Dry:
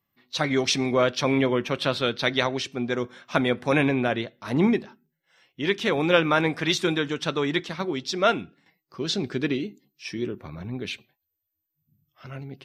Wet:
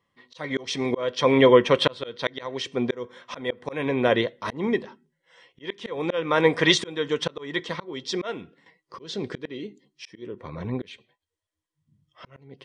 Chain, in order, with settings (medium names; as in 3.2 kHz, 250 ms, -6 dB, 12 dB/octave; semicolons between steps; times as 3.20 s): small resonant body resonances 490/1000/1900/3200 Hz, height 11 dB, ringing for 25 ms; resampled via 22.05 kHz; slow attack 509 ms; trim +2.5 dB